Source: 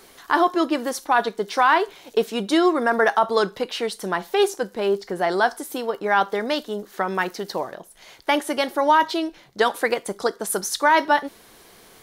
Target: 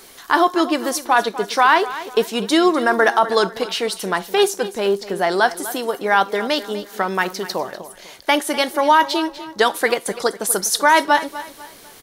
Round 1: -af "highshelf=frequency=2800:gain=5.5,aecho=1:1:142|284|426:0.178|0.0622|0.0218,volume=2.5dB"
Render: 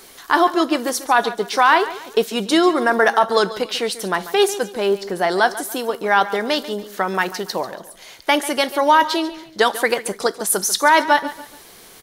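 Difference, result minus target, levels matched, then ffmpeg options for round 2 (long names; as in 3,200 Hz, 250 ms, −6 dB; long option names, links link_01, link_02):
echo 106 ms early
-af "highshelf=frequency=2800:gain=5.5,aecho=1:1:248|496|744:0.178|0.0622|0.0218,volume=2.5dB"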